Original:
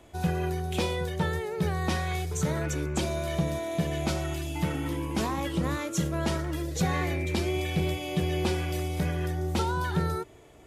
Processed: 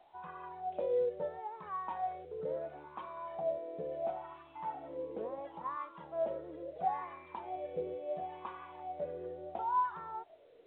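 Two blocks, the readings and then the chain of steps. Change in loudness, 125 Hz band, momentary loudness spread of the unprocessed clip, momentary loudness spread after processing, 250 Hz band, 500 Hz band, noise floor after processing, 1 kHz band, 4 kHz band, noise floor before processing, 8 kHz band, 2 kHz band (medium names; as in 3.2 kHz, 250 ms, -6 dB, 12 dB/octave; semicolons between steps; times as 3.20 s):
-9.5 dB, -30.0 dB, 3 LU, 13 LU, -21.0 dB, -5.0 dB, -59 dBFS, -2.5 dB, under -25 dB, -51 dBFS, under -40 dB, -19.0 dB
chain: wah-wah 0.73 Hz 480–1100 Hz, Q 14; trim +7 dB; A-law 64 kbps 8 kHz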